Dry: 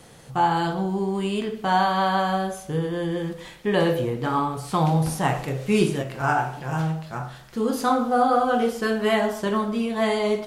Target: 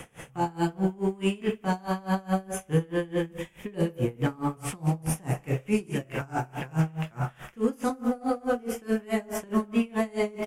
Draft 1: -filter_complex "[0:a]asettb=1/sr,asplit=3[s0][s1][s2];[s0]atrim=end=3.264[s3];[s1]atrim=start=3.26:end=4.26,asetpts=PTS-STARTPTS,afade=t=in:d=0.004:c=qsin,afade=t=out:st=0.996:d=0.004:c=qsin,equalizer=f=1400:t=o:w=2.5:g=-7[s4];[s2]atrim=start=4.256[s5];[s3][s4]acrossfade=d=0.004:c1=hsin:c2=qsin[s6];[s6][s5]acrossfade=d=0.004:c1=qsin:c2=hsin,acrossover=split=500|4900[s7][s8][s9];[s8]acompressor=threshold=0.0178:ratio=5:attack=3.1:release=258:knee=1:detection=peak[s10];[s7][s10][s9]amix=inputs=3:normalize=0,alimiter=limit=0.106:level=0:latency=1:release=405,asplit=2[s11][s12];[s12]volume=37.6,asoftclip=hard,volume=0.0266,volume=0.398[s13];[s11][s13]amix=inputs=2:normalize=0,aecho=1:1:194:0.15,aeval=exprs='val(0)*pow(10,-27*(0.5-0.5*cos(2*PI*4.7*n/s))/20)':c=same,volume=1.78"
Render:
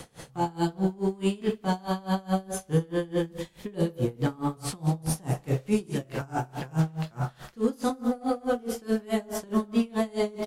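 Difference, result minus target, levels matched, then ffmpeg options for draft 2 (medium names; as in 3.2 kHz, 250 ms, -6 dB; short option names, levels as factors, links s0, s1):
2 kHz band -3.5 dB
-filter_complex "[0:a]asettb=1/sr,asplit=3[s0][s1][s2];[s0]atrim=end=3.264[s3];[s1]atrim=start=3.26:end=4.26,asetpts=PTS-STARTPTS,afade=t=in:d=0.004:c=qsin,afade=t=out:st=0.996:d=0.004:c=qsin,equalizer=f=1400:t=o:w=2.5:g=-7[s4];[s2]atrim=start=4.256[s5];[s3][s4]acrossfade=d=0.004:c1=hsin:c2=qsin[s6];[s6][s5]acrossfade=d=0.004:c1=qsin:c2=hsin,acrossover=split=500|4900[s7][s8][s9];[s8]acompressor=threshold=0.0178:ratio=5:attack=3.1:release=258:knee=1:detection=peak,lowpass=f=2600:t=q:w=2.3[s10];[s7][s10][s9]amix=inputs=3:normalize=0,alimiter=limit=0.106:level=0:latency=1:release=405,asplit=2[s11][s12];[s12]volume=37.6,asoftclip=hard,volume=0.0266,volume=0.398[s13];[s11][s13]amix=inputs=2:normalize=0,aecho=1:1:194:0.15,aeval=exprs='val(0)*pow(10,-27*(0.5-0.5*cos(2*PI*4.7*n/s))/20)':c=same,volume=1.78"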